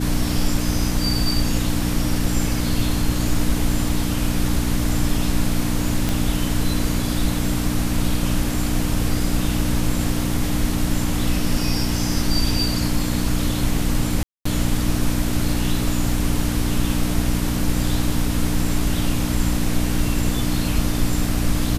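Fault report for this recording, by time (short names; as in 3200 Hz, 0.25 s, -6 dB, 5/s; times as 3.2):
hum 60 Hz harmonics 5 -24 dBFS
6.09 pop
14.23–14.45 gap 0.224 s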